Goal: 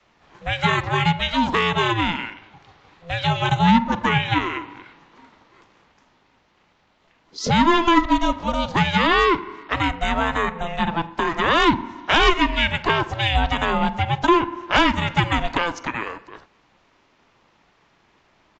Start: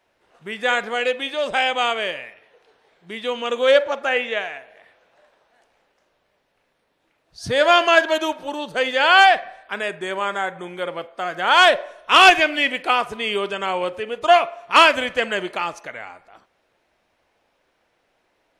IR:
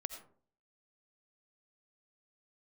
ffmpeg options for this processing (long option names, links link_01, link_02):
-filter_complex "[0:a]adynamicequalizer=threshold=0.02:dfrequency=650:dqfactor=6.6:tfrequency=650:tqfactor=6.6:attack=5:release=100:ratio=0.375:range=4:mode=boostabove:tftype=bell,aeval=exprs='val(0)*sin(2*PI*340*n/s)':channel_layout=same,acrossover=split=150[link_01][link_02];[link_02]acompressor=threshold=-30dB:ratio=2.5[link_03];[link_01][link_03]amix=inputs=2:normalize=0,aresample=16000,aresample=44100,acontrast=70,volume=3.5dB"